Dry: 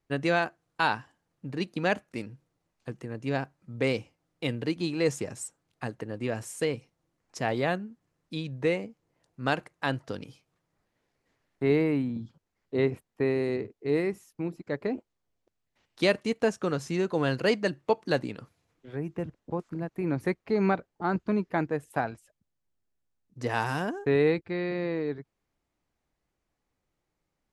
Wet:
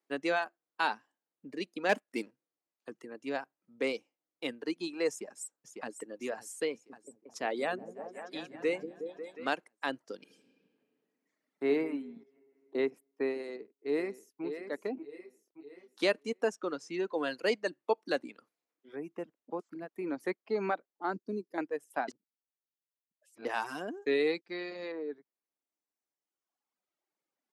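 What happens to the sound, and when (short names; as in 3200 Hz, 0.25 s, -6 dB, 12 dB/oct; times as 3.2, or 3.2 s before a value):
1.89–2.31 sample leveller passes 2
5.09–5.92 echo throw 0.55 s, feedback 65%, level -7.5 dB
6.71–9.5 repeats that get brighter 0.181 s, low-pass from 400 Hz, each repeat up 1 oct, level -3 dB
10.16–11.67 reverb throw, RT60 2.5 s, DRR 0.5 dB
12.23–12.75 compressor 10:1, threshold -45 dBFS
13.4–14.44 echo throw 0.58 s, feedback 45%, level -7 dB
14.94–16.03 doubler 28 ms -3 dB
16.55–17.18 LPF 6900 Hz
21.13–21.58 band shelf 1400 Hz -12.5 dB 2.7 oct
22.08–23.45 reverse
24.02–24.92 bell 5800 Hz +11.5 dB 1.8 oct
whole clip: HPF 250 Hz 24 dB/oct; reverb removal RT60 1.9 s; gain -4 dB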